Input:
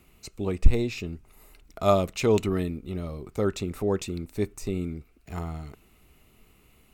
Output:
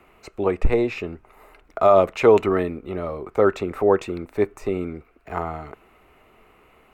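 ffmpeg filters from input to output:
ffmpeg -i in.wav -filter_complex "[0:a]acrossover=split=400 2100:gain=0.158 1 0.0891[link_01][link_02][link_03];[link_01][link_02][link_03]amix=inputs=3:normalize=0,atempo=1,alimiter=level_in=17dB:limit=-1dB:release=50:level=0:latency=1,volume=-3.5dB" out.wav

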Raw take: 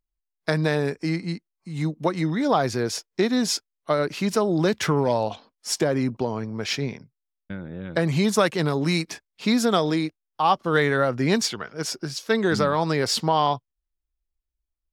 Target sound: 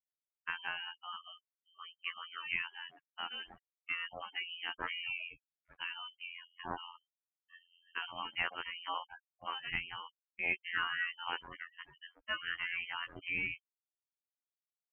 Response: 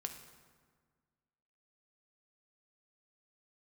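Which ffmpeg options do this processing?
-af "afftfilt=real='hypot(re,im)*cos(PI*b)':imag='0':win_size=2048:overlap=0.75,afftfilt=real='re*gte(hypot(re,im),0.0141)':imag='im*gte(hypot(re,im),0.0141)':win_size=1024:overlap=0.75,aderivative,agate=range=-9dB:threshold=-60dB:ratio=16:detection=peak,lowpass=frequency=2800:width_type=q:width=0.5098,lowpass=frequency=2800:width_type=q:width=0.6013,lowpass=frequency=2800:width_type=q:width=0.9,lowpass=frequency=2800:width_type=q:width=2.563,afreqshift=-3300,volume=6dB"

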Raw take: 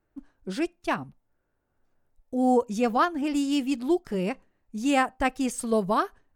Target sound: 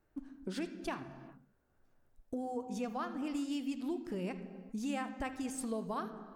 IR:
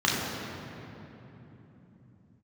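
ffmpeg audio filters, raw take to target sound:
-filter_complex "[0:a]acompressor=threshold=-37dB:ratio=6,asplit=2[link_01][link_02];[1:a]atrim=start_sample=2205,afade=type=out:start_time=0.42:duration=0.01,atrim=end_sample=18963,adelay=46[link_03];[link_02][link_03]afir=irnorm=-1:irlink=0,volume=-24.5dB[link_04];[link_01][link_04]amix=inputs=2:normalize=0"

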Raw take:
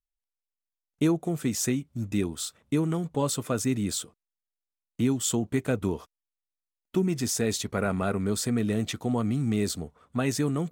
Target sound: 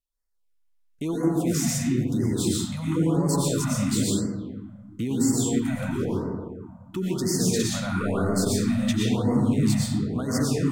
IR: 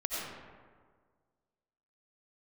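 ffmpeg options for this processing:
-filter_complex "[0:a]alimiter=limit=-22dB:level=0:latency=1:release=63[link_01];[1:a]atrim=start_sample=2205,asetrate=33516,aresample=44100[link_02];[link_01][link_02]afir=irnorm=-1:irlink=0,afftfilt=real='re*(1-between(b*sr/1024,350*pow(3100/350,0.5+0.5*sin(2*PI*0.99*pts/sr))/1.41,350*pow(3100/350,0.5+0.5*sin(2*PI*0.99*pts/sr))*1.41))':imag='im*(1-between(b*sr/1024,350*pow(3100/350,0.5+0.5*sin(2*PI*0.99*pts/sr))/1.41,350*pow(3100/350,0.5+0.5*sin(2*PI*0.99*pts/sr))*1.41))':win_size=1024:overlap=0.75,volume=1dB"

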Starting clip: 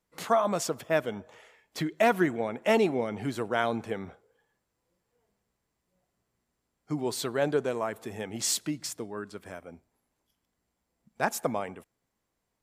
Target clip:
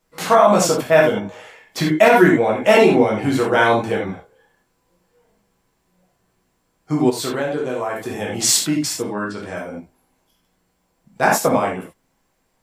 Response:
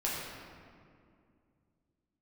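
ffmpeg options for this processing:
-filter_complex "[1:a]atrim=start_sample=2205,atrim=end_sample=4410[link_01];[0:a][link_01]afir=irnorm=-1:irlink=0,asplit=3[link_02][link_03][link_04];[link_02]afade=type=out:start_time=7.09:duration=0.02[link_05];[link_03]acompressor=threshold=-30dB:ratio=6,afade=type=in:start_time=7.09:duration=0.02,afade=type=out:start_time=8.37:duration=0.02[link_06];[link_04]afade=type=in:start_time=8.37:duration=0.02[link_07];[link_05][link_06][link_07]amix=inputs=3:normalize=0,asettb=1/sr,asplit=3[link_08][link_09][link_10];[link_08]atrim=end=9.134[link_11];[link_09]atrim=start=9.13:end=9.57,asetpts=PTS-STARTPTS,afade=type=in:duration=0.004:curve=qsin,afade=type=out:start_time=0.436:duration=0.004:curve=qsin,lowpass=7300[link_12];[link_10]atrim=start=9.566[link_13];[link_11][link_12]acrossfade=duration=0.004:curve1=hsin:curve2=qsin[link_14];[link_14][link_13]acrossfade=duration=0.004:curve1=qsin:curve2=hsin,alimiter=level_in=11dB:limit=-1dB:release=50:level=0:latency=1,volume=-1dB"

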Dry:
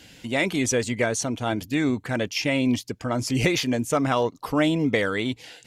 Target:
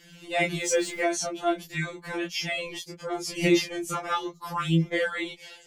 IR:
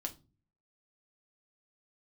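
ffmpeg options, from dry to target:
-filter_complex "[0:a]asettb=1/sr,asplit=3[link_01][link_02][link_03];[link_01]atrim=end=0.604[link_04];[link_02]atrim=start=0.6:end=1.01,asetpts=PTS-STARTPTS,afade=type=in:duration=0.004:curve=qsin,afade=type=out:start_time=0.406:duration=0.004:curve=qsin,aeval=exprs='val(0)+0.5*0.015*sgn(val(0))':channel_layout=same[link_05];[link_03]atrim=start=1.006[link_06];[link_04][link_05]acrossfade=duration=0.004:curve1=hsin:curve2=qsin[link_07];[link_07][link_06]acrossfade=duration=0.004:curve1=qsin:curve2=hsin,flanger=delay=18:depth=2.7:speed=0.41,afftfilt=real='re*2.83*eq(mod(b,8),0)':imag='im*2.83*eq(mod(b,8),0)':win_size=2048:overlap=0.75,volume=2.5dB"

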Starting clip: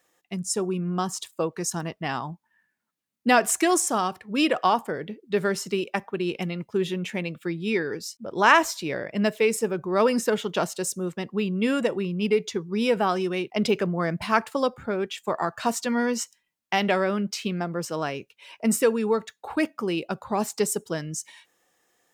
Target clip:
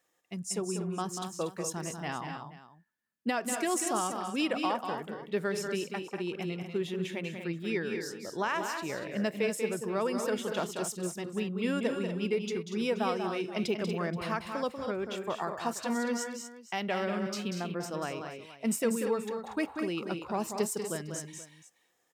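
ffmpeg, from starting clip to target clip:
ffmpeg -i in.wav -filter_complex "[0:a]alimiter=limit=-12.5dB:level=0:latency=1:release=404,asplit=2[link_01][link_02];[link_02]aecho=0:1:190|216|238|478:0.447|0.112|0.355|0.133[link_03];[link_01][link_03]amix=inputs=2:normalize=0,volume=-7.5dB" out.wav

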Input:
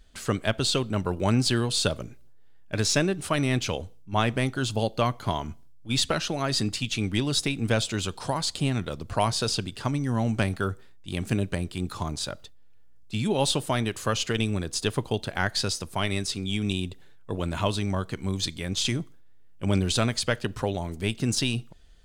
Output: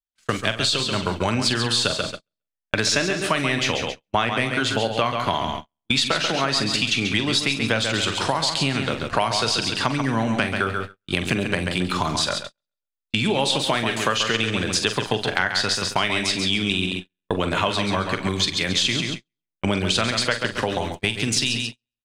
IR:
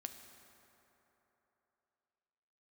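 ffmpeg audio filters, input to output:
-filter_complex "[0:a]asplit=2[link_01][link_02];[link_02]adelay=44,volume=-10dB[link_03];[link_01][link_03]amix=inputs=2:normalize=0,acrossover=split=150|2800[link_04][link_05][link_06];[link_05]dynaudnorm=framelen=100:gausssize=31:maxgain=7dB[link_07];[link_04][link_07][link_06]amix=inputs=3:normalize=0,equalizer=frequency=3200:width=0.34:gain=10.5,asplit=2[link_08][link_09];[link_09]aecho=0:1:136|272|408|544:0.422|0.148|0.0517|0.0181[link_10];[link_08][link_10]amix=inputs=2:normalize=0,agate=range=-53dB:threshold=-26dB:ratio=16:detection=peak,acompressor=threshold=-26dB:ratio=4,volume=5.5dB"

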